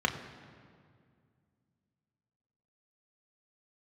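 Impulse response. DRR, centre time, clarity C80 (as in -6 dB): 2.0 dB, 24 ms, 10.5 dB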